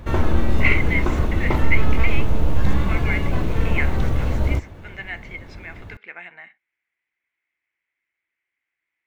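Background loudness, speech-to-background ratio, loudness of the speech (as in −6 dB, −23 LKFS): −23.0 LKFS, −5.0 dB, −28.0 LKFS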